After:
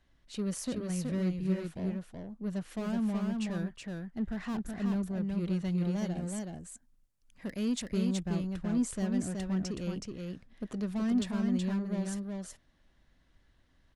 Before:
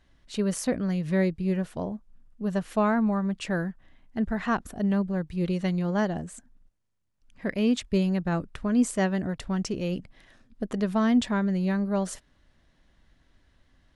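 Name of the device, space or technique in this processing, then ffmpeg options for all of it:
one-band saturation: -filter_complex "[0:a]asettb=1/sr,asplit=3[a][b][c];[a]atrim=end=5.924[d];[b]atrim=start=5.92:end=7.89,asetpts=PTS-STARTPTS,afade=t=in:d=0.004:c=qsin,afade=t=out:st=1.966:d=0.004:c=qsin,aemphasis=mode=production:type=cd[e];[c]atrim=start=7.886[f];[d][e]acrossfade=d=0.004:c1=hsin:c2=qsin[g];[g][f]acrossfade=d=0.004:c1=qsin:c2=hsin,acrossover=split=330|3900[h][i][j];[i]asoftclip=type=tanh:threshold=-36dB[k];[h][k][j]amix=inputs=3:normalize=0,aecho=1:1:373:0.668,volume=-6dB"

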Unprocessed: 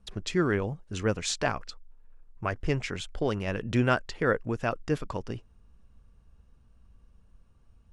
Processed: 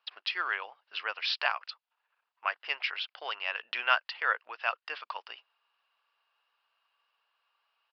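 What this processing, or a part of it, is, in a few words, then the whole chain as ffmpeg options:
musical greeting card: -af "aresample=11025,aresample=44100,highpass=f=850:w=0.5412,highpass=f=850:w=1.3066,equalizer=f=2.8k:t=o:w=0.33:g=7,volume=2dB"

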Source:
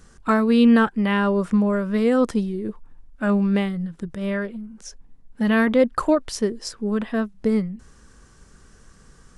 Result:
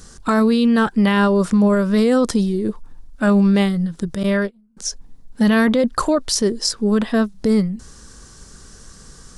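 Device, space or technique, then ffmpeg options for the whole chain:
over-bright horn tweeter: -filter_complex "[0:a]highshelf=f=3.3k:t=q:w=1.5:g=6,alimiter=limit=-16dB:level=0:latency=1:release=11,asettb=1/sr,asplit=3[a][b][c];[a]atrim=end=4.234[d];[b]atrim=start=4.23:end=4.77,asetpts=PTS-STARTPTS,afade=t=in:d=0.004:c=qsin,afade=t=out:st=0.536:d=0.004:c=qsin,agate=range=-28dB:threshold=-28dB:ratio=16:detection=peak[e];[c]atrim=start=4.766[f];[d][e]acrossfade=d=0.004:c1=hsin:c2=qsin[g];[g][f]acrossfade=d=0.004:c1=qsin:c2=hsin,volume=7dB"

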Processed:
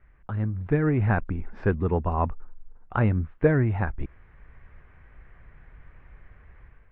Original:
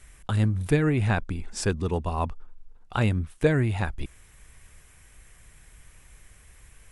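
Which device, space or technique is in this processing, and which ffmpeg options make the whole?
action camera in a waterproof case: -af "lowpass=f=1.9k:w=0.5412,lowpass=f=1.9k:w=1.3066,dynaudnorm=f=510:g=3:m=9dB,volume=-5.5dB" -ar 32000 -c:a aac -b:a 48k

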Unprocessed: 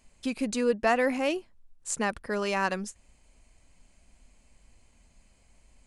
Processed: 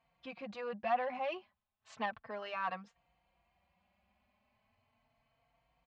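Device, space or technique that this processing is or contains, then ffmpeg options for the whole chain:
barber-pole flanger into a guitar amplifier: -filter_complex "[0:a]asplit=2[a][b];[b]adelay=3.9,afreqshift=0.35[c];[a][c]amix=inputs=2:normalize=1,asoftclip=type=tanh:threshold=-24.5dB,highpass=100,equalizer=f=290:t=q:w=4:g=-10,equalizer=f=410:t=q:w=4:g=-8,equalizer=f=730:t=q:w=4:g=9,equalizer=f=1.1k:t=q:w=4:g=7,lowpass=f=3.6k:w=0.5412,lowpass=f=3.6k:w=1.3066,asettb=1/sr,asplit=3[d][e][f];[d]atrim=end=1.324[g];[e]atrim=start=1.32:end=2.06,asetpts=PTS-STARTPTS,afade=t=in:d=0.004:c=qsin,afade=t=out:st=0.736:d=0.004:c=qsin,equalizer=f=3.9k:w=0.36:g=7.5[h];[f]atrim=start=2.056[i];[g][h]acrossfade=d=0.004:c1=hsin:c2=qsin[j];[j][i]acrossfade=d=0.004:c1=qsin:c2=hsin,volume=-6.5dB"

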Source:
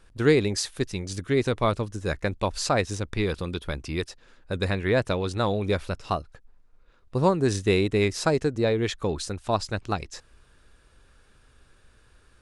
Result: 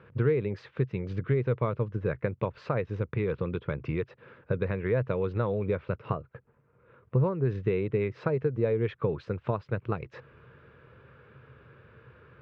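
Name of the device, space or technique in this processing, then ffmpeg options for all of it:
bass amplifier: -filter_complex "[0:a]acompressor=threshold=-37dB:ratio=4,highpass=f=88:w=0.5412,highpass=f=88:w=1.3066,equalizer=f=130:t=q:w=4:g=9,equalizer=f=280:t=q:w=4:g=-6,equalizer=f=470:t=q:w=4:g=6,equalizer=f=750:t=q:w=4:g=-8,equalizer=f=1.8k:t=q:w=4:g=-4,lowpass=f=2.3k:w=0.5412,lowpass=f=2.3k:w=1.3066,asettb=1/sr,asplit=3[a][b][c];[a]atrim=end=6.014[d];[b]atrim=start=6.01:end=7.2,asetpts=PTS-STARTPTS,afade=t=in:d=0.004:c=qsin,afade=t=out:st=1.186:d=0.004:c=qsin,highshelf=f=5.2k:g=-11.5[e];[c]atrim=start=7.196[f];[d][e]acrossfade=d=0.004:c1=hsin:c2=qsin[g];[g][f]acrossfade=d=0.004:c1=qsin:c2=hsin,volume=8dB"

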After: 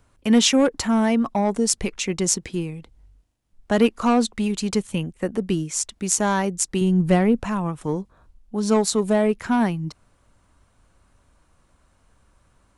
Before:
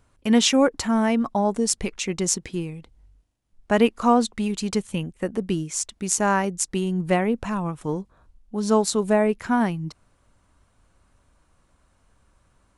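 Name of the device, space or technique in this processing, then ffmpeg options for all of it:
one-band saturation: -filter_complex "[0:a]acrossover=split=360|3600[a][b][c];[b]asoftclip=type=tanh:threshold=-18dB[d];[a][d][c]amix=inputs=3:normalize=0,asettb=1/sr,asplit=3[e][f][g];[e]atrim=end=6.814[h];[f]atrim=start=6.81:end=7.4,asetpts=PTS-STARTPTS,afade=t=in:d=0.004:c=qsin,afade=t=out:st=0.586:d=0.004:c=qsin,lowshelf=f=190:g=9[i];[g]atrim=start=7.396[j];[h][i]acrossfade=d=0.004:c1=hsin:c2=qsin[k];[k][j]acrossfade=d=0.004:c1=qsin:c2=hsin,volume=2dB"

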